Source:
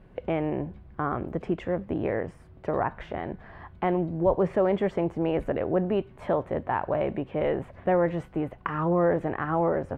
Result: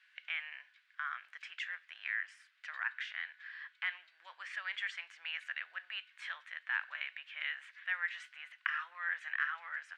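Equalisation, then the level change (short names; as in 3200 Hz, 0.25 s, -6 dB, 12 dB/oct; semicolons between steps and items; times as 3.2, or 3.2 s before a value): Chebyshev high-pass 1600 Hz, order 4; air absorption 95 m; high shelf 2600 Hz +9.5 dB; +2.5 dB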